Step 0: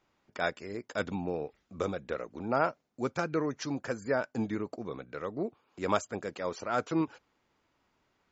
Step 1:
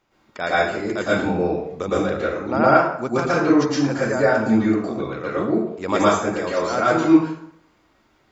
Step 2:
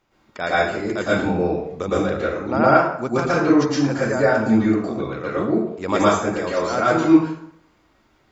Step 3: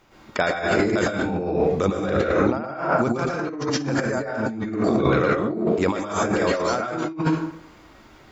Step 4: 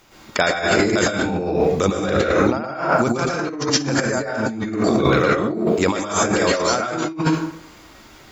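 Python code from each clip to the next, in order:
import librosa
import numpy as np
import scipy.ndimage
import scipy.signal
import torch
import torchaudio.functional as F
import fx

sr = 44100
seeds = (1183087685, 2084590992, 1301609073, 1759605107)

y1 = fx.rev_plate(x, sr, seeds[0], rt60_s=0.67, hf_ratio=0.75, predelay_ms=100, drr_db=-8.0)
y1 = y1 * librosa.db_to_amplitude(4.5)
y2 = fx.low_shelf(y1, sr, hz=120.0, db=4.0)
y3 = fx.over_compress(y2, sr, threshold_db=-28.0, ratio=-1.0)
y3 = y3 * librosa.db_to_amplitude(4.0)
y4 = fx.high_shelf(y3, sr, hz=3500.0, db=11.0)
y4 = y4 * librosa.db_to_amplitude(2.5)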